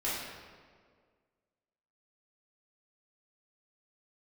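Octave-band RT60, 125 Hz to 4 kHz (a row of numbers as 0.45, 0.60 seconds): 1.8, 2.0, 2.0, 1.7, 1.4, 1.2 seconds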